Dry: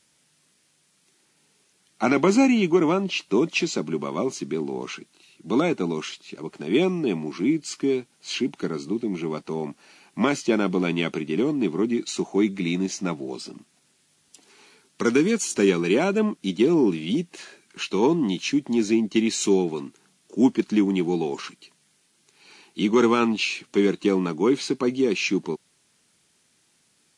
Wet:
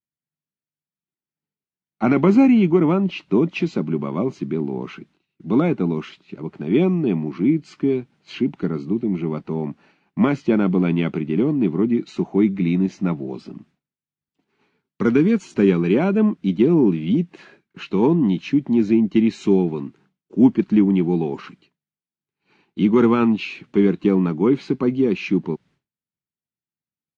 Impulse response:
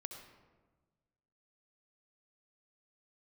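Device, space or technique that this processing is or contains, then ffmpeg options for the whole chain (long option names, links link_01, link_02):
hearing-loss simulation: -af "lowpass=2300,bass=frequency=250:gain=11,treble=frequency=4000:gain=2,agate=range=-33dB:threshold=-46dB:ratio=3:detection=peak"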